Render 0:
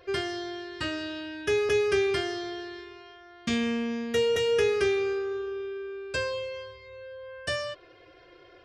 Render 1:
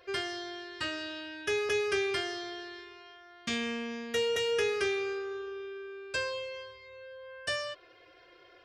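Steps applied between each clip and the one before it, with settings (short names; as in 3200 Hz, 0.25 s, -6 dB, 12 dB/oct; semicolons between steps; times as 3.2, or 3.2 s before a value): low shelf 430 Hz -10 dB; gain -1 dB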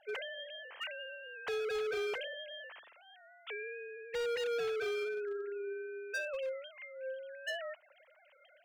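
sine-wave speech; overloaded stage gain 33.5 dB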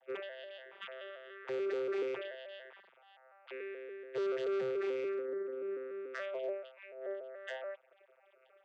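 arpeggiated vocoder bare fifth, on C3, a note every 0.144 s; gain +1 dB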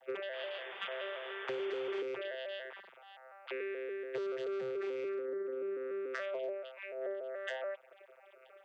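compressor 6:1, threshold -43 dBFS, peak gain reduction 11 dB; painted sound noise, 0.33–2.02, 360–3600 Hz -57 dBFS; gain +7 dB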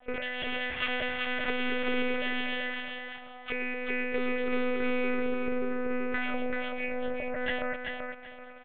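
dynamic EQ 2300 Hz, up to +7 dB, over -60 dBFS, Q 2.2; monotone LPC vocoder at 8 kHz 250 Hz; feedback echo 0.384 s, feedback 23%, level -4.5 dB; gain +5 dB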